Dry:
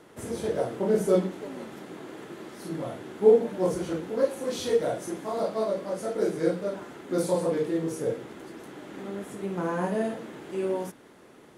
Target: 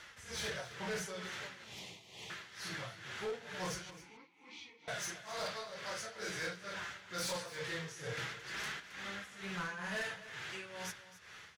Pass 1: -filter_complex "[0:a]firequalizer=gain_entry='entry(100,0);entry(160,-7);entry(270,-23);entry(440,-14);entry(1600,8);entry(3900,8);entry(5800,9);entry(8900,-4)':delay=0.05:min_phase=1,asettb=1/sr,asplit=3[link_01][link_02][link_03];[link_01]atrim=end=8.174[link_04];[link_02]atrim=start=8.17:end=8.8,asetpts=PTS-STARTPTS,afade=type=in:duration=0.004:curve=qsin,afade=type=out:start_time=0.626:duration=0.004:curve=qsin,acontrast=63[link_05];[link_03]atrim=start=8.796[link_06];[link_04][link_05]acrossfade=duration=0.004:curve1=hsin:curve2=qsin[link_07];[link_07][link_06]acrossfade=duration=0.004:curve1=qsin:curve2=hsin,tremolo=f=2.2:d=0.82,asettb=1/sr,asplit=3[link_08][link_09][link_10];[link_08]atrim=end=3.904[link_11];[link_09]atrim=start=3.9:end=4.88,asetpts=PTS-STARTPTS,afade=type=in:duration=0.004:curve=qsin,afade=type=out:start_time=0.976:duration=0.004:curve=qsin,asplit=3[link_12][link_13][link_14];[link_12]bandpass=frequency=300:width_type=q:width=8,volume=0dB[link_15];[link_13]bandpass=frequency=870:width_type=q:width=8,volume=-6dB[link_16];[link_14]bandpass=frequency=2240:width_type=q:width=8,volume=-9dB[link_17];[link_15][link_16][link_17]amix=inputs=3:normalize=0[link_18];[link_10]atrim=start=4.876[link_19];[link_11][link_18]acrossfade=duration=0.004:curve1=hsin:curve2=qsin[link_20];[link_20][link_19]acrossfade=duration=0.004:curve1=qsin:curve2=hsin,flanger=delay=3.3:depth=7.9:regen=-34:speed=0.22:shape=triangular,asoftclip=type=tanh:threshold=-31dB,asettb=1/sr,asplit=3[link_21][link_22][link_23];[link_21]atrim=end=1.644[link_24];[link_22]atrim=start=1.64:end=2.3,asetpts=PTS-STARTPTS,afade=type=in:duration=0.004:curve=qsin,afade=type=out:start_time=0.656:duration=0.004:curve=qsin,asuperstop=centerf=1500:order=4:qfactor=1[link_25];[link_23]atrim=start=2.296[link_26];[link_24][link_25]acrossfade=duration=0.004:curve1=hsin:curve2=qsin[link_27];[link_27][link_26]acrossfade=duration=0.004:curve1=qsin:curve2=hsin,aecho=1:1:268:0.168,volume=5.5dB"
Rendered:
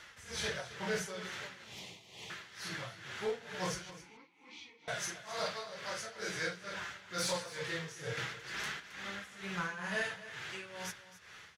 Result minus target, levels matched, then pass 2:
soft clipping: distortion −11 dB
-filter_complex "[0:a]firequalizer=gain_entry='entry(100,0);entry(160,-7);entry(270,-23);entry(440,-14);entry(1600,8);entry(3900,8);entry(5800,9);entry(8900,-4)':delay=0.05:min_phase=1,asettb=1/sr,asplit=3[link_01][link_02][link_03];[link_01]atrim=end=8.174[link_04];[link_02]atrim=start=8.17:end=8.8,asetpts=PTS-STARTPTS,afade=type=in:duration=0.004:curve=qsin,afade=type=out:start_time=0.626:duration=0.004:curve=qsin,acontrast=63[link_05];[link_03]atrim=start=8.796[link_06];[link_04][link_05]acrossfade=duration=0.004:curve1=hsin:curve2=qsin[link_07];[link_07][link_06]acrossfade=duration=0.004:curve1=qsin:curve2=hsin,tremolo=f=2.2:d=0.82,asettb=1/sr,asplit=3[link_08][link_09][link_10];[link_08]atrim=end=3.904[link_11];[link_09]atrim=start=3.9:end=4.88,asetpts=PTS-STARTPTS,afade=type=in:duration=0.004:curve=qsin,afade=type=out:start_time=0.976:duration=0.004:curve=qsin,asplit=3[link_12][link_13][link_14];[link_12]bandpass=frequency=300:width_type=q:width=8,volume=0dB[link_15];[link_13]bandpass=frequency=870:width_type=q:width=8,volume=-6dB[link_16];[link_14]bandpass=frequency=2240:width_type=q:width=8,volume=-9dB[link_17];[link_15][link_16][link_17]amix=inputs=3:normalize=0[link_18];[link_10]atrim=start=4.876[link_19];[link_11][link_18]acrossfade=duration=0.004:curve1=hsin:curve2=qsin[link_20];[link_20][link_19]acrossfade=duration=0.004:curve1=qsin:curve2=hsin,flanger=delay=3.3:depth=7.9:regen=-34:speed=0.22:shape=triangular,asoftclip=type=tanh:threshold=-40dB,asettb=1/sr,asplit=3[link_21][link_22][link_23];[link_21]atrim=end=1.644[link_24];[link_22]atrim=start=1.64:end=2.3,asetpts=PTS-STARTPTS,afade=type=in:duration=0.004:curve=qsin,afade=type=out:start_time=0.656:duration=0.004:curve=qsin,asuperstop=centerf=1500:order=4:qfactor=1[link_25];[link_23]atrim=start=2.296[link_26];[link_24][link_25]acrossfade=duration=0.004:curve1=hsin:curve2=qsin[link_27];[link_27][link_26]acrossfade=duration=0.004:curve1=qsin:curve2=hsin,aecho=1:1:268:0.168,volume=5.5dB"

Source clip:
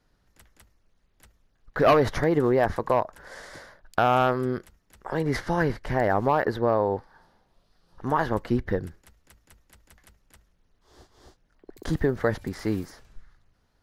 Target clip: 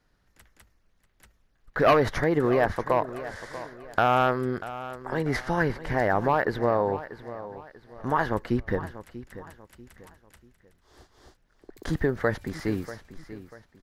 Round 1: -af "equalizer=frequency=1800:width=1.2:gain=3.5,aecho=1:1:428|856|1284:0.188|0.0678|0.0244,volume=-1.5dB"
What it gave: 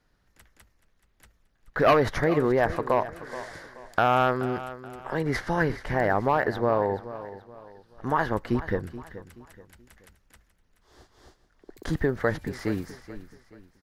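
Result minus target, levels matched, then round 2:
echo 212 ms early
-af "equalizer=frequency=1800:width=1.2:gain=3.5,aecho=1:1:640|1280|1920:0.188|0.0678|0.0244,volume=-1.5dB"

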